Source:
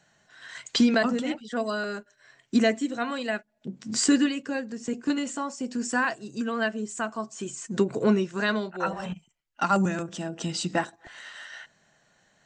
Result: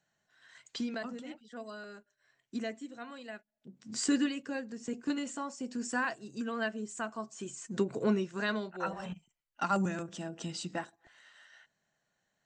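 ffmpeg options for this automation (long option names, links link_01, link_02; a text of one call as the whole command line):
ffmpeg -i in.wav -af "volume=-7dB,afade=type=in:start_time=3.73:duration=0.45:silence=0.375837,afade=type=out:start_time=10.26:duration=0.9:silence=0.354813" out.wav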